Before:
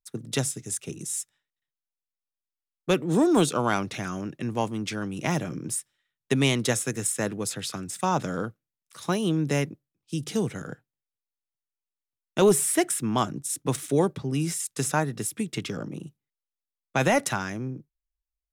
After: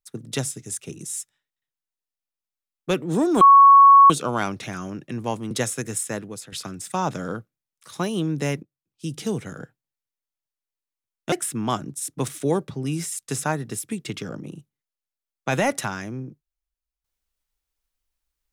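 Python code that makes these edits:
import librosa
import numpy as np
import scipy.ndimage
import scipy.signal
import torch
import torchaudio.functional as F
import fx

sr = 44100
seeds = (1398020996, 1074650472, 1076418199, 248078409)

y = fx.edit(x, sr, fx.insert_tone(at_s=3.41, length_s=0.69, hz=1110.0, db=-7.0),
    fx.cut(start_s=4.82, length_s=1.78),
    fx.fade_out_to(start_s=7.1, length_s=0.51, floor_db=-11.0),
    fx.fade_in_from(start_s=9.72, length_s=0.45, floor_db=-21.0),
    fx.cut(start_s=12.41, length_s=0.39), tone=tone)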